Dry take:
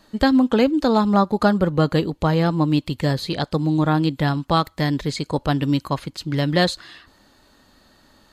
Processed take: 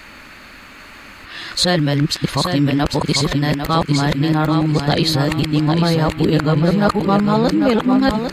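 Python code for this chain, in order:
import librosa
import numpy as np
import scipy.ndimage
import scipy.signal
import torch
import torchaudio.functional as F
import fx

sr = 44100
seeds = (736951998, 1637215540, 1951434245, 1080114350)

p1 = x[::-1].copy()
p2 = fx.over_compress(p1, sr, threshold_db=-25.0, ratio=-0.5)
p3 = p1 + (p2 * 10.0 ** (2.0 / 20.0))
p4 = fx.dmg_noise_band(p3, sr, seeds[0], low_hz=1100.0, high_hz=2700.0, level_db=-42.0)
p5 = fx.quant_dither(p4, sr, seeds[1], bits=12, dither='triangular')
y = p5 + fx.echo_feedback(p5, sr, ms=799, feedback_pct=32, wet_db=-6.5, dry=0)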